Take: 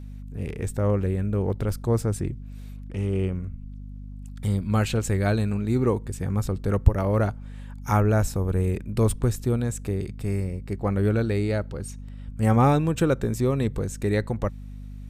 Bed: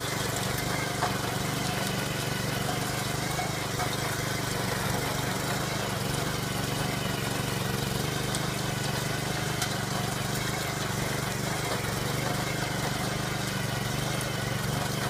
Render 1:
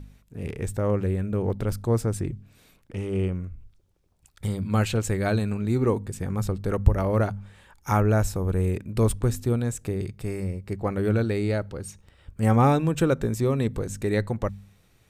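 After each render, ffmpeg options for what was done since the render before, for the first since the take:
-af "bandreject=f=50:t=h:w=4,bandreject=f=100:t=h:w=4,bandreject=f=150:t=h:w=4,bandreject=f=200:t=h:w=4,bandreject=f=250:t=h:w=4"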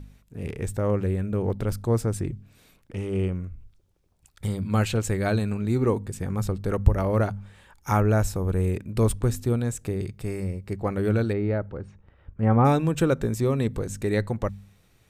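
-filter_complex "[0:a]asplit=3[s0][s1][s2];[s0]afade=t=out:st=11.32:d=0.02[s3];[s1]lowpass=1700,afade=t=in:st=11.32:d=0.02,afade=t=out:st=12.64:d=0.02[s4];[s2]afade=t=in:st=12.64:d=0.02[s5];[s3][s4][s5]amix=inputs=3:normalize=0"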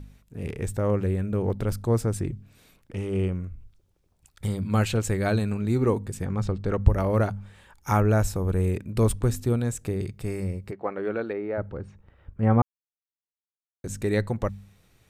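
-filter_complex "[0:a]asettb=1/sr,asplit=3[s0][s1][s2];[s0]atrim=end=6.254[s3];[s1]atrim=start=6.25:end=6.87,asetpts=PTS-STARTPTS,afade=t=in:d=0.004:c=qsin,afade=t=out:st=0.616:d=0.004:c=qsin,lowpass=5300[s4];[s2]atrim=start=6.866[s5];[s3][s4]acrossfade=d=0.004:c1=hsin:c2=qsin[s6];[s6][s5]acrossfade=d=0.004:c1=qsin:c2=hsin,asplit=3[s7][s8][s9];[s7]afade=t=out:st=10.7:d=0.02[s10];[s8]highpass=370,lowpass=2300,afade=t=in:st=10.7:d=0.02,afade=t=out:st=11.57:d=0.02[s11];[s9]afade=t=in:st=11.57:d=0.02[s12];[s10][s11][s12]amix=inputs=3:normalize=0,asplit=3[s13][s14][s15];[s13]atrim=end=12.62,asetpts=PTS-STARTPTS,afade=t=out:st=12.616:d=0.004:c=hsin[s16];[s14]atrim=start=12.62:end=13.84,asetpts=PTS-STARTPTS,volume=0[s17];[s15]atrim=start=13.84,asetpts=PTS-STARTPTS,afade=t=in:d=0.004:c=hsin[s18];[s16][s17][s18]concat=n=3:v=0:a=1"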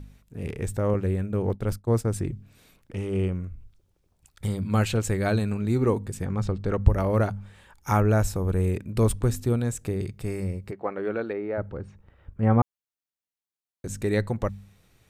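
-filter_complex "[0:a]asettb=1/sr,asplit=3[s0][s1][s2];[s0]atrim=end=0.944[s3];[s1]atrim=start=0.94:end=2.07,asetpts=PTS-STARTPTS,afade=t=in:d=0.004:c=qsin,afade=t=out:st=1.126:d=0.004:c=qsin,agate=range=0.0224:threshold=0.0447:ratio=3:release=100:detection=peak[s4];[s2]atrim=start=2.066[s5];[s3][s4]acrossfade=d=0.004:c1=hsin:c2=qsin[s6];[s6][s5]acrossfade=d=0.004:c1=qsin:c2=hsin"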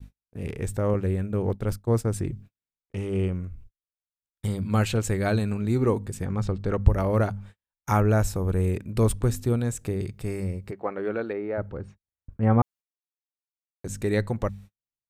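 -af "agate=range=0.00562:threshold=0.00708:ratio=16:detection=peak"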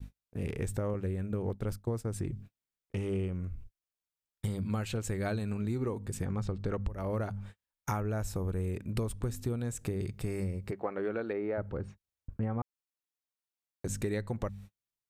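-af "alimiter=limit=0.237:level=0:latency=1:release=493,acompressor=threshold=0.0316:ratio=6"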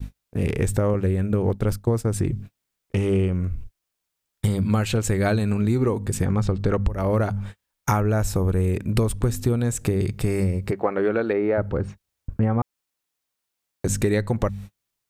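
-af "volume=3.98"

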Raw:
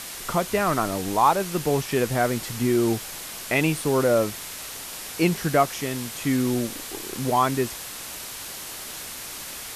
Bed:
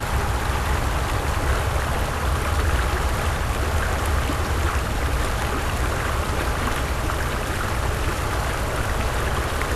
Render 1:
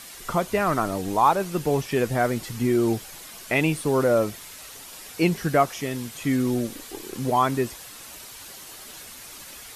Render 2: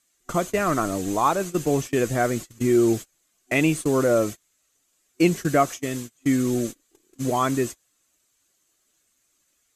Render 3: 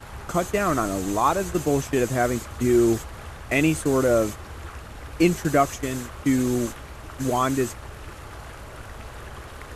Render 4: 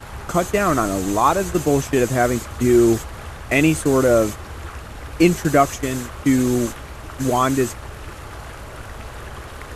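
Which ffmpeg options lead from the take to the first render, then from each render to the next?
-af "afftdn=nr=8:nf=-37"
-af "agate=range=0.0316:threshold=0.0316:ratio=16:detection=peak,superequalizer=6b=1.58:9b=0.562:15b=2.51"
-filter_complex "[1:a]volume=0.168[s0];[0:a][s0]amix=inputs=2:normalize=0"
-af "volume=1.68"

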